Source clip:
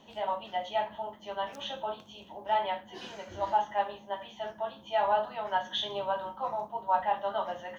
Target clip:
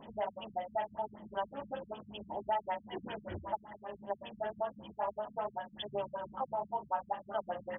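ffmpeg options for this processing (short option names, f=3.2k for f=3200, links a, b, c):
-af "acompressor=threshold=-39dB:ratio=3,afftfilt=real='re*lt(b*sr/1024,200*pow(3600/200,0.5+0.5*sin(2*PI*5.2*pts/sr)))':imag='im*lt(b*sr/1024,200*pow(3600/200,0.5+0.5*sin(2*PI*5.2*pts/sr)))':win_size=1024:overlap=0.75,volume=5.5dB"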